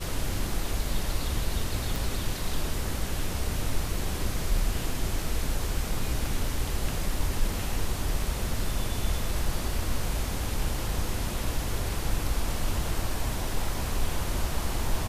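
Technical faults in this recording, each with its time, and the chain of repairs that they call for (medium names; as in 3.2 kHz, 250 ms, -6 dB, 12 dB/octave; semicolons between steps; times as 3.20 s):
1.96 s: pop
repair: de-click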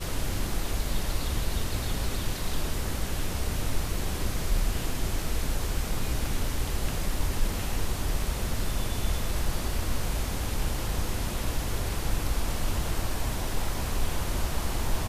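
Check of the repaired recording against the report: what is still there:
nothing left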